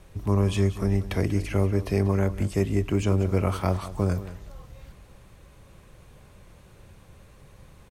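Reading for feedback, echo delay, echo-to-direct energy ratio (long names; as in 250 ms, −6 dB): 18%, 189 ms, −14.5 dB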